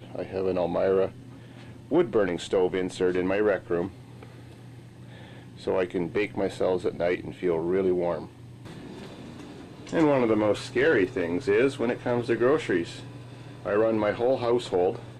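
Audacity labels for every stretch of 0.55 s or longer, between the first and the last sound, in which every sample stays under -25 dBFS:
1.060000	1.910000	silence
3.860000	5.670000	silence
8.180000	9.930000	silence
12.820000	13.660000	silence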